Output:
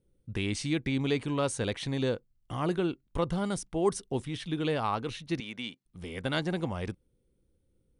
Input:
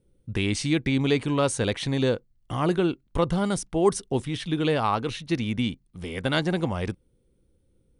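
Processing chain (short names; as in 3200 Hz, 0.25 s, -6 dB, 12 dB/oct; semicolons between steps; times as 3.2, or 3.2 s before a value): 5.4–5.86 weighting filter A; gain -6 dB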